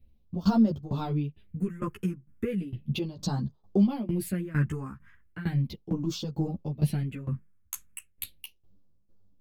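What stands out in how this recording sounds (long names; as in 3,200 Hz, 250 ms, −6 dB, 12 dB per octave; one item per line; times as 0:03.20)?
phaser sweep stages 4, 0.36 Hz, lowest notch 640–2,100 Hz
tremolo saw down 2.2 Hz, depth 90%
a shimmering, thickened sound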